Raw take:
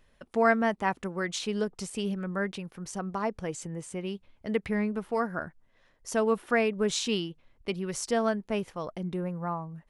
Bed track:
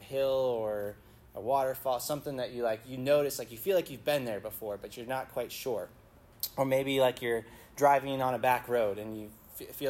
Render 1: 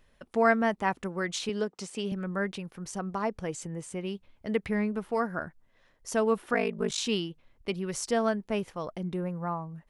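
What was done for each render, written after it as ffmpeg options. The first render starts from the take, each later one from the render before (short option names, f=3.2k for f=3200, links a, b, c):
-filter_complex "[0:a]asettb=1/sr,asplit=3[a][b][c];[a]atrim=end=1.494[d];[b]atrim=start=1.49:end=2.12,asetpts=PTS-STARTPTS,afade=t=in:d=0.004:c=qsin,afade=t=out:st=0.626:d=0.004:c=qsin,highpass=200,lowpass=7.9k[e];[c]atrim=start=2.116[f];[d][e]acrossfade=d=0.004:c1=hsin:c2=qsin[g];[g][f]acrossfade=d=0.004:c1=qsin:c2=hsin,asettb=1/sr,asplit=3[h][i][j];[h]atrim=end=6.534[k];[i]atrim=start=6.53:end=6.98,asetpts=PTS-STARTPTS,afade=t=in:d=0.004:c=qsin,afade=t=out:st=0.446:d=0.004:c=qsin,aeval=exprs='val(0)*sin(2*PI*26*n/s)':c=same[l];[j]atrim=start=6.976[m];[k][l]acrossfade=d=0.004:c1=hsin:c2=qsin[n];[n][m]acrossfade=d=0.004:c1=qsin:c2=hsin"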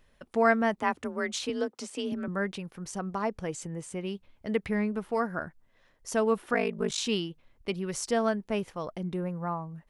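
-filter_complex "[0:a]asettb=1/sr,asplit=3[a][b][c];[a]atrim=end=0.804[d];[b]atrim=start=0.8:end=2.28,asetpts=PTS-STARTPTS,afade=t=in:d=0.004:c=qsin,afade=t=out:st=1.476:d=0.004:c=qsin,afreqshift=36[e];[c]atrim=start=2.276[f];[d][e]acrossfade=d=0.004:c1=hsin:c2=qsin[g];[g][f]acrossfade=d=0.004:c1=qsin:c2=hsin"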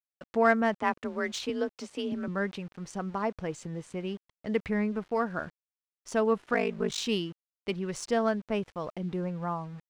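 -af "aeval=exprs='val(0)*gte(abs(val(0)),0.00398)':c=same,adynamicsmooth=sensitivity=4.5:basefreq=5.3k"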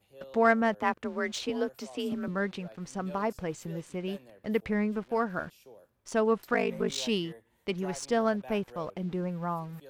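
-filter_complex "[1:a]volume=-19dB[a];[0:a][a]amix=inputs=2:normalize=0"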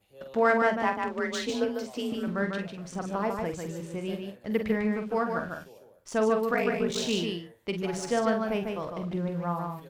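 -filter_complex "[0:a]asplit=2[a][b];[b]adelay=46,volume=-8dB[c];[a][c]amix=inputs=2:normalize=0,aecho=1:1:148:0.596"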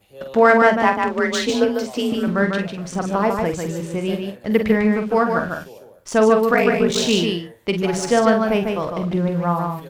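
-af "volume=10.5dB,alimiter=limit=-2dB:level=0:latency=1"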